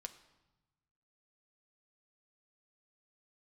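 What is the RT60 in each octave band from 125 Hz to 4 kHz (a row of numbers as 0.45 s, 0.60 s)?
1.7 s, 1.4 s, 1.0 s, 1.1 s, 0.90 s, 0.85 s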